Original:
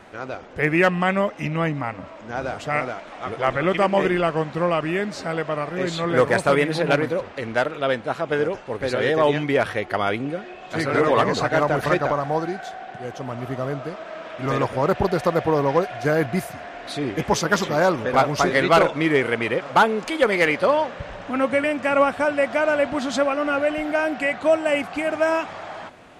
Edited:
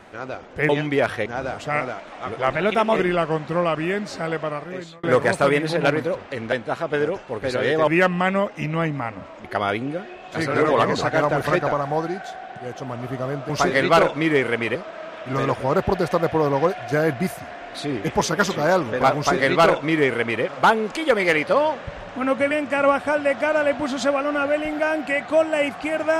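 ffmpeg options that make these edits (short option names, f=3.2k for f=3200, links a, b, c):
-filter_complex "[0:a]asplit=11[a][b][c][d][e][f][g][h][i][j][k];[a]atrim=end=0.692[l];[b]atrim=start=9.258:end=9.832[m];[c]atrim=start=2.258:end=3.534[n];[d]atrim=start=3.53:end=4.02,asetpts=PTS-STARTPTS,asetrate=49833,aresample=44100,atrim=end_sample=19123,asetpts=PTS-STARTPTS[o];[e]atrim=start=4.016:end=6.09,asetpts=PTS-STARTPTS,afade=t=out:st=1.444:d=0.63[p];[f]atrim=start=6.09:end=7.582,asetpts=PTS-STARTPTS,afade=t=in:d=0.004:c=hsin[q];[g]atrim=start=7.908:end=9.262[r];[h]atrim=start=0.688:end=2.262[s];[i]atrim=start=9.828:end=13.882[t];[j]atrim=start=18.288:end=19.552[u];[k]atrim=start=13.878[v];[l][m]acrossfade=d=0.004:c1=hsin:c2=hsin[w];[w][n]acrossfade=d=0.004:c1=hsin:c2=hsin[x];[x][o]acrossfade=d=0.004:c1=hsin:c2=hsin[y];[p][q]concat=n=2:v=0:a=1[z];[y][z]acrossfade=d=0.004:c1=hsin:c2=hsin[aa];[aa][r]acrossfade=d=0.004:c1=hsin:c2=hsin[ab];[ab][s]acrossfade=d=0.004:c1=hsin:c2=hsin[ac];[ac][t]acrossfade=d=0.004:c1=hsin:c2=hsin[ad];[ad][u]acrossfade=d=0.004:c1=hsin:c2=hsin[ae];[ae][v]acrossfade=d=0.004:c1=hsin:c2=hsin"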